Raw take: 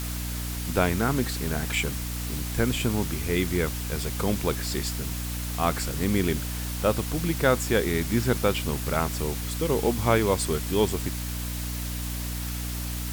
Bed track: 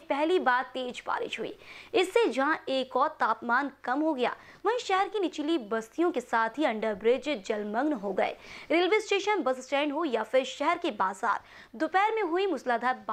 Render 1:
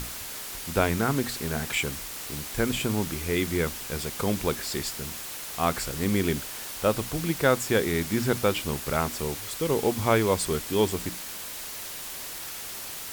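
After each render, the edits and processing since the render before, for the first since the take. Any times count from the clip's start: hum notches 60/120/180/240/300 Hz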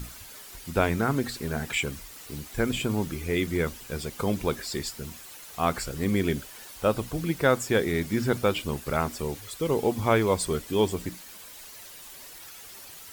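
noise reduction 10 dB, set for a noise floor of -38 dBFS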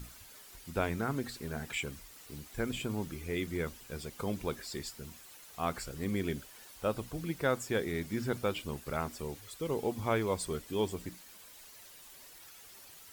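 trim -8.5 dB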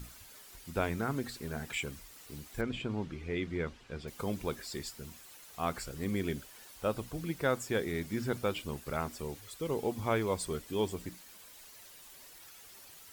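2.61–4.08 s: low-pass 3.8 kHz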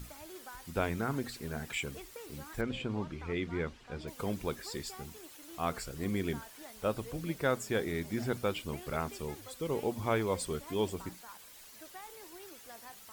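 add bed track -24.5 dB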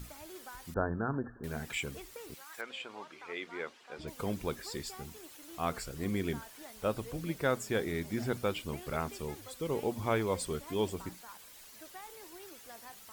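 0.74–1.44 s: brick-wall FIR low-pass 1.8 kHz; 2.33–3.98 s: high-pass 950 Hz -> 410 Hz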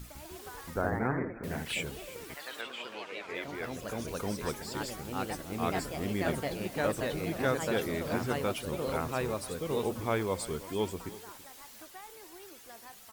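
delay 331 ms -17.5 dB; ever faster or slower copies 154 ms, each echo +2 st, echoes 3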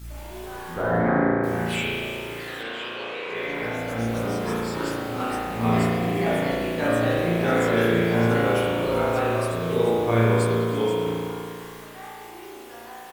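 doubling 17 ms -3 dB; spring tank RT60 2.3 s, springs 35 ms, chirp 70 ms, DRR -7.5 dB

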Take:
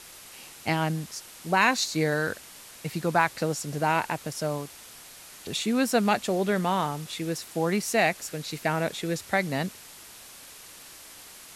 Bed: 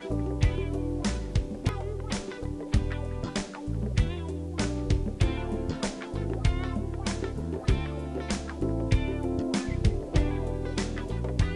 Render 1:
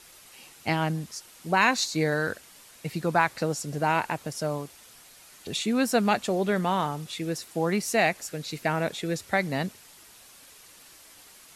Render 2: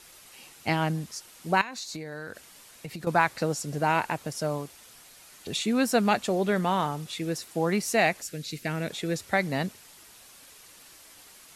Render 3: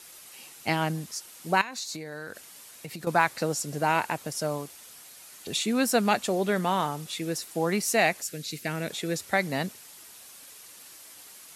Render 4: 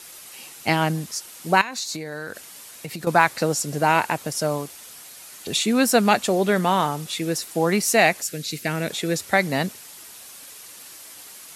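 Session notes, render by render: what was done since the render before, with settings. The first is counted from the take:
noise reduction 6 dB, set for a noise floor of -47 dBFS
1.61–3.07 s: compression 12:1, threshold -33 dBFS; 8.22–8.90 s: peaking EQ 900 Hz -11.5 dB 1.4 oct
high-pass 130 Hz 6 dB/octave; treble shelf 6.8 kHz +6.5 dB
trim +6 dB; peak limiter -2 dBFS, peak gain reduction 1 dB

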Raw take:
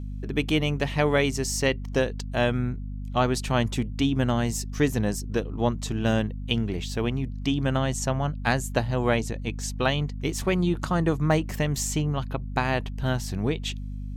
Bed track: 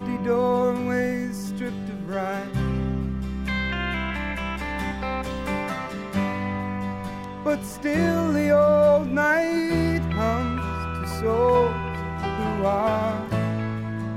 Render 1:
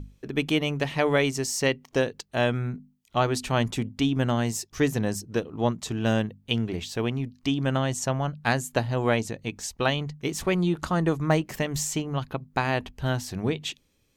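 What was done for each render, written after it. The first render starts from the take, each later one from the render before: hum notches 50/100/150/200/250 Hz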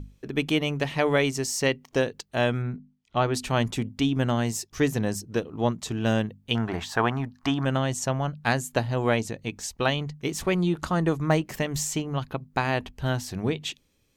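2.62–3.34 s: distance through air 110 m; 6.55–7.65 s: high-order bell 1.1 kHz +14.5 dB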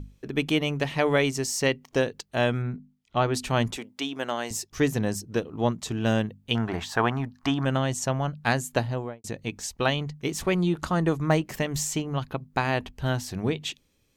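3.77–4.51 s: high-pass 450 Hz; 8.80–9.24 s: studio fade out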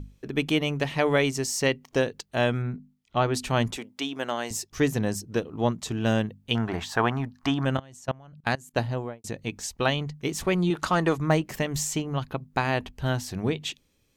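7.77–8.78 s: level held to a coarse grid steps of 24 dB; 10.70–11.18 s: overdrive pedal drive 12 dB, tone 7.1 kHz, clips at -10.5 dBFS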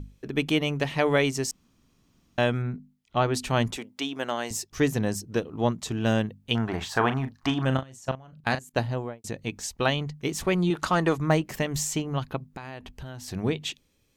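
1.51–2.38 s: room tone; 6.77–8.64 s: doubling 38 ms -10 dB; 12.48–13.28 s: compression 5:1, threshold -36 dBFS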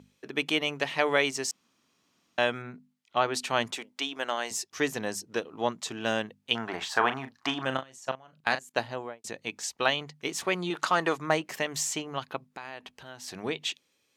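frequency weighting A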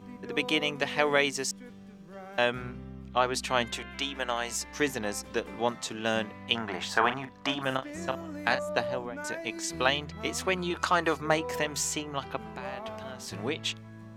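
add bed track -17.5 dB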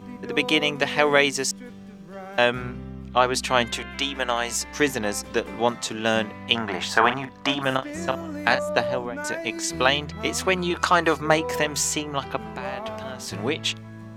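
trim +6.5 dB; peak limiter -2 dBFS, peak gain reduction 1.5 dB

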